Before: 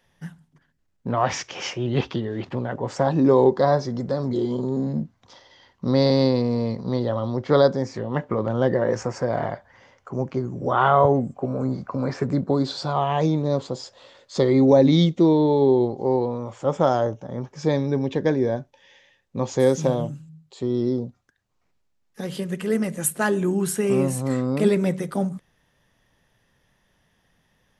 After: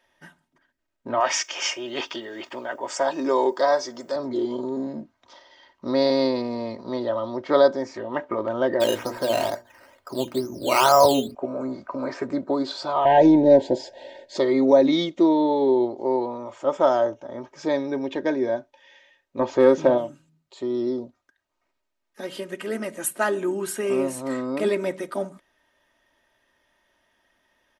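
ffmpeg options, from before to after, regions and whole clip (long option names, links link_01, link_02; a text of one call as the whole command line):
ffmpeg -i in.wav -filter_complex "[0:a]asettb=1/sr,asplit=3[link_01][link_02][link_03];[link_01]atrim=end=1.204[link_04];[link_02]atrim=start=1.2:end=4.16,asetpts=PTS-STARTPTS,afade=type=in:duration=0.004:curve=qsin,afade=type=out:start_time=2.956:duration=0.004:curve=qsin,aemphasis=mode=production:type=riaa,bandreject=frequency=4000:width=9.1[link_05];[link_03]atrim=start=4.156[link_06];[link_04][link_05]acrossfade=duration=0.004:curve1=hsin:curve2=qsin[link_07];[link_07][link_06]acrossfade=duration=0.004:curve1=qsin:curve2=hsin,asettb=1/sr,asplit=3[link_08][link_09][link_10];[link_08]atrim=end=8.804[link_11];[link_09]atrim=start=8.8:end=11.35,asetpts=PTS-STARTPTS,afade=type=in:duration=0.004:curve=qsin,afade=type=out:start_time=2.546:duration=0.004:curve=qsin,lowshelf=frequency=310:gain=7.5,acrusher=samples=10:mix=1:aa=0.000001:lfo=1:lforange=6:lforate=2.2,bandreject=frequency=60:width_type=h:width=6,bandreject=frequency=120:width_type=h:width=6,bandreject=frequency=180:width_type=h:width=6,bandreject=frequency=240:width_type=h:width=6,bandreject=frequency=300:width_type=h:width=6,bandreject=frequency=360:width_type=h:width=6,bandreject=frequency=420:width_type=h:width=6,bandreject=frequency=480:width_type=h:width=6[link_12];[link_10]atrim=start=11.346[link_13];[link_11][link_12]acrossfade=duration=0.004:curve1=hsin:curve2=qsin[link_14];[link_14][link_13]acrossfade=duration=0.004:curve1=qsin:curve2=hsin,asettb=1/sr,asplit=3[link_15][link_16][link_17];[link_15]atrim=end=13.054[link_18];[link_16]atrim=start=13.05:end=14.37,asetpts=PTS-STARTPTS,afade=type=in:duration=0.004:curve=qsin,afade=type=out:start_time=1.316:duration=0.004:curve=qsin,tiltshelf=frequency=1500:gain=6.5,acontrast=48,asuperstop=centerf=1200:order=8:qfactor=1.9[link_19];[link_17]atrim=start=14.366[link_20];[link_18][link_19]acrossfade=duration=0.004:curve1=hsin:curve2=qsin[link_21];[link_21][link_20]acrossfade=duration=0.004:curve1=qsin:curve2=hsin,asettb=1/sr,asplit=3[link_22][link_23][link_24];[link_22]atrim=end=19.394[link_25];[link_23]atrim=start=19.39:end=19.98,asetpts=PTS-STARTPTS,afade=type=in:duration=0.004:curve=qsin,afade=type=out:start_time=0.586:duration=0.004:curve=qsin,lowpass=4500,highshelf=frequency=2100:gain=-7.5,acontrast=63[link_26];[link_24]atrim=start=19.976[link_27];[link_25][link_26]acrossfade=duration=0.004:curve1=hsin:curve2=qsin[link_28];[link_28][link_27]acrossfade=duration=0.004:curve1=qsin:curve2=hsin,bass=frequency=250:gain=-14,treble=frequency=4000:gain=-5,aecho=1:1:3.2:0.58" out.wav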